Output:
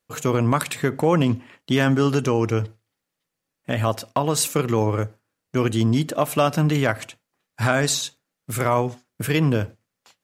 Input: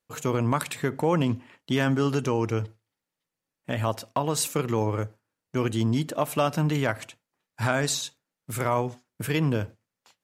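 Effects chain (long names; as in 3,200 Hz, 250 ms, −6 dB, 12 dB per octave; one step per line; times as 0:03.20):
notch filter 910 Hz, Q 16
level +5 dB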